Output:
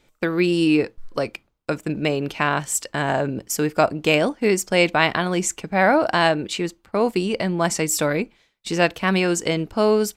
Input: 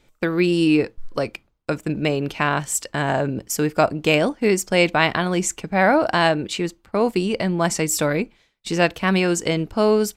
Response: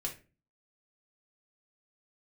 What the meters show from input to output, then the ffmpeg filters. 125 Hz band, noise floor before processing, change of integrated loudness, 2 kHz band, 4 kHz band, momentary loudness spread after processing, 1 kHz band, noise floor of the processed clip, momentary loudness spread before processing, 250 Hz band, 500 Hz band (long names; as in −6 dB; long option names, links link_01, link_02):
−2.0 dB, −63 dBFS, −0.5 dB, 0.0 dB, 0.0 dB, 10 LU, 0.0 dB, −66 dBFS, 10 LU, −1.0 dB, −0.5 dB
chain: -af "lowshelf=frequency=140:gain=-4.5"